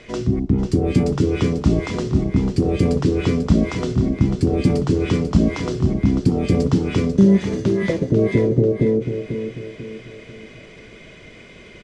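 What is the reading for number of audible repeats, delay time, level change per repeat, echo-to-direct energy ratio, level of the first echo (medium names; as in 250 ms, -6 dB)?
4, 493 ms, -7.5 dB, -7.5 dB, -8.5 dB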